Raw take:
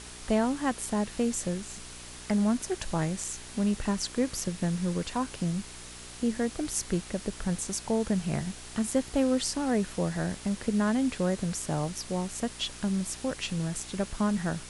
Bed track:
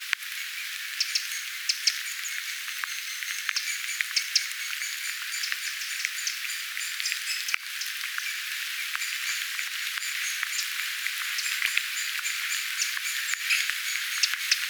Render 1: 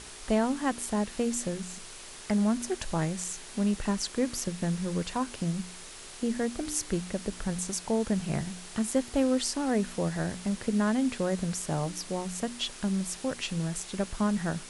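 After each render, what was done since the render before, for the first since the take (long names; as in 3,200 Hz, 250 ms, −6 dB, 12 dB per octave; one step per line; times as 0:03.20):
hum removal 60 Hz, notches 5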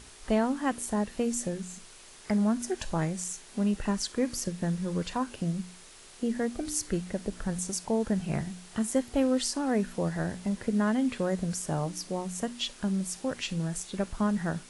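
noise reduction from a noise print 6 dB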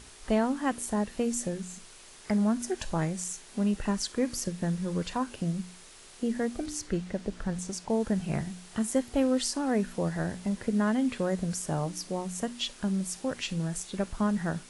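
0:06.66–0:07.90: high-frequency loss of the air 56 metres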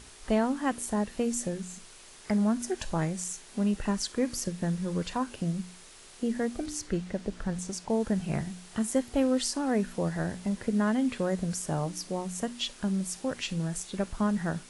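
no processing that can be heard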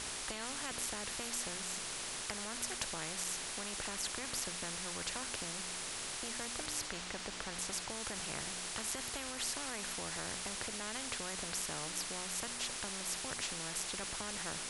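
brickwall limiter −20.5 dBFS, peak gain reduction 7 dB
every bin compressed towards the loudest bin 4 to 1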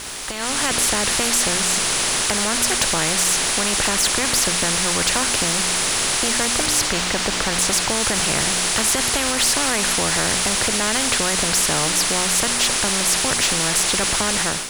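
automatic gain control gain up to 11 dB
leveller curve on the samples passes 3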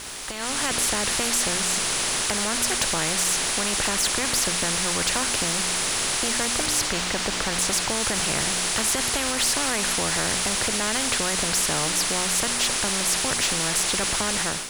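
level −4.5 dB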